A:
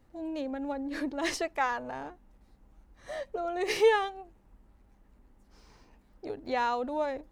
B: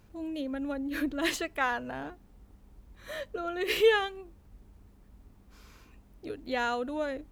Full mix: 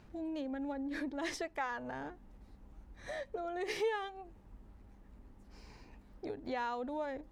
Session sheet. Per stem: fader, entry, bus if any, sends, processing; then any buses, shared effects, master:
+1.5 dB, 0.00 s, no send, none
0.0 dB, 0.00 s, no send, low-pass 6.2 kHz; compressor with a negative ratio -33 dBFS; auto duck -12 dB, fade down 0.20 s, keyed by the first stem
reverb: none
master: treble shelf 6.5 kHz -4.5 dB; compression 2:1, threshold -42 dBFS, peak gain reduction 14 dB

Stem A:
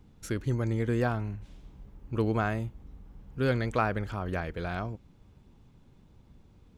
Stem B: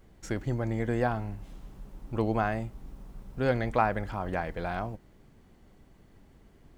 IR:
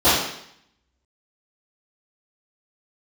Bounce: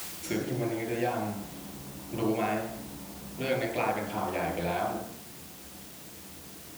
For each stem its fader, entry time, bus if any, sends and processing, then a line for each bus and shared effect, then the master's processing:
-2.0 dB, 0.00 s, no send, resonant high shelf 1.6 kHz +10.5 dB, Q 3; word length cut 6-bit, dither triangular; auto duck -10 dB, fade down 0.40 s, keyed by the second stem
-11.5 dB, 0.00 s, send -4.5 dB, compression, threshold -36 dBFS, peak gain reduction 16 dB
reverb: on, RT60 0.70 s, pre-delay 3 ms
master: high-pass 110 Hz 12 dB/octave

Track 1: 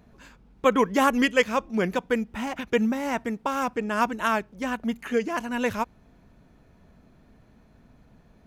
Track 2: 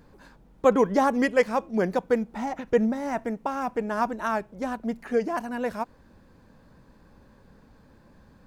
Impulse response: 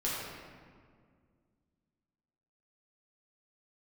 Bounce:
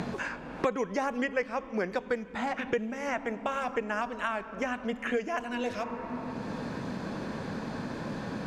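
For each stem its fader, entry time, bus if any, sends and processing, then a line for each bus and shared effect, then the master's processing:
+1.0 dB, 0.00 s, send -23.5 dB, compression 2.5:1, threshold -26 dBFS, peak gain reduction 8.5 dB; auto duck -8 dB, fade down 0.25 s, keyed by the second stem
-4.5 dB, 0.00 s, polarity flipped, no send, none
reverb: on, RT60 2.0 s, pre-delay 5 ms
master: low-pass 7 kHz 12 dB/octave; three bands compressed up and down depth 100%

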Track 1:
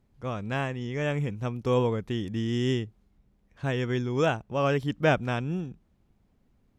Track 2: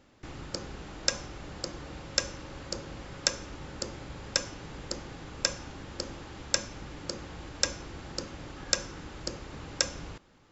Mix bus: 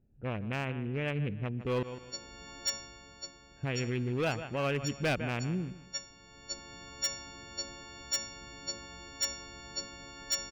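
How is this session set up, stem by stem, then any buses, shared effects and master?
-1.5 dB, 0.00 s, muted 1.83–3.37 s, no send, echo send -17 dB, local Wiener filter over 41 samples; resonant low-pass 2.6 kHz, resonance Q 2.7
-7.5 dB, 1.60 s, no send, no echo send, partials quantised in pitch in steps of 4 st; auto duck -11 dB, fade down 0.90 s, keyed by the first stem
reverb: none
echo: feedback delay 155 ms, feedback 30%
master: overload inside the chain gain 20.5 dB; peak limiter -25 dBFS, peak gain reduction 4.5 dB

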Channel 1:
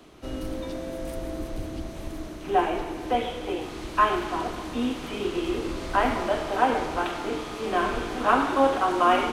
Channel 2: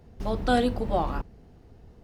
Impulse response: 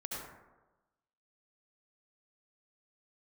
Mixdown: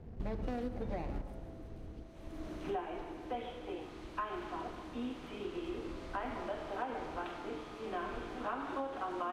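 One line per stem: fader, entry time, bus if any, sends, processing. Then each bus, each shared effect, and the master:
2.52 s -1 dB -> 3.02 s -12 dB, 0.20 s, no send, auto duck -18 dB, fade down 1.25 s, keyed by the second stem
+1.0 dB, 0.00 s, send -11.5 dB, median filter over 41 samples; compression 1.5:1, threshold -44 dBFS, peak gain reduction 9 dB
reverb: on, RT60 1.1 s, pre-delay 63 ms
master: treble shelf 5.1 kHz -10 dB; compression 10:1, threshold -34 dBFS, peak gain reduction 11.5 dB

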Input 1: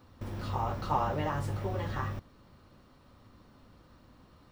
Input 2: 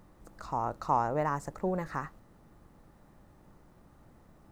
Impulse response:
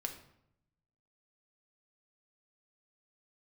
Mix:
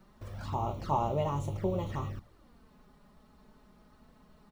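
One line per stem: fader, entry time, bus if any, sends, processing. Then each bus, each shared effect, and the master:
-2.0 dB, 0.00 s, no send, none
-1.0 dB, 1.7 ms, no send, none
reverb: none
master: touch-sensitive flanger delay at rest 5.9 ms, full sweep at -30 dBFS

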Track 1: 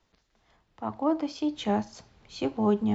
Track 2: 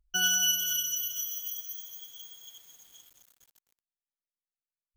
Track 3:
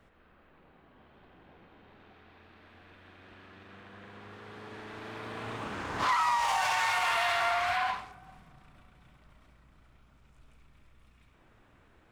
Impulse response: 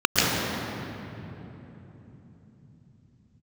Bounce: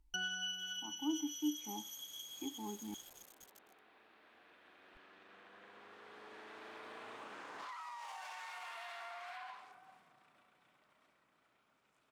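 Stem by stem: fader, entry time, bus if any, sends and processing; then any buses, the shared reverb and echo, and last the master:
-7.5 dB, 0.00 s, no bus, no send, vowel filter u
+3.0 dB, 0.00 s, bus A, no send, low-pass that closes with the level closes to 2.7 kHz, closed at -28.5 dBFS
-7.0 dB, 1.60 s, bus A, no send, high-pass 360 Hz 12 dB/octave; compression 2.5:1, threshold -39 dBFS, peak gain reduction 10 dB
bus A: 0.0 dB, compression 2:1, threshold -48 dBFS, peak gain reduction 13.5 dB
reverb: none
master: none

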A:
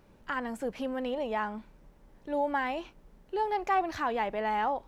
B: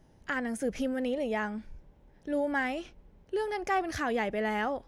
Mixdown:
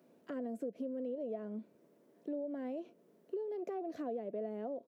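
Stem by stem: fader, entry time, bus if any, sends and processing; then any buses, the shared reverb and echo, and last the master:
-11.0 dB, 0.00 s, no send, compression 2:1, threshold -47 dBFS, peak gain reduction 13 dB
+2.0 dB, 1.3 ms, no send, rippled Chebyshev low-pass 710 Hz, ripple 3 dB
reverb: none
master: high-pass 230 Hz 24 dB/octave; treble shelf 7.5 kHz +9.5 dB; compression, threshold -37 dBFS, peak gain reduction 11.5 dB

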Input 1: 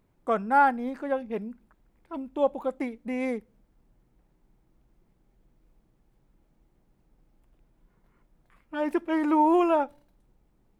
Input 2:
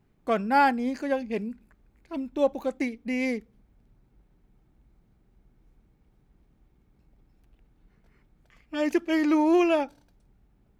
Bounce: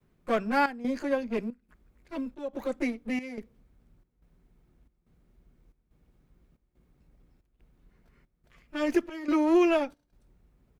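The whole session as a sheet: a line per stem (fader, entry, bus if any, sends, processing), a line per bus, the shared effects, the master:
-4.0 dB, 0.00 s, no send, comb filter that takes the minimum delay 5.6 ms; compression, threshold -28 dBFS, peak gain reduction 11 dB
-1.5 dB, 15 ms, polarity flipped, no send, none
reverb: none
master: peaking EQ 830 Hz -5.5 dB 0.28 oct; trance gate "xxxxxxx.." 160 bpm -12 dB

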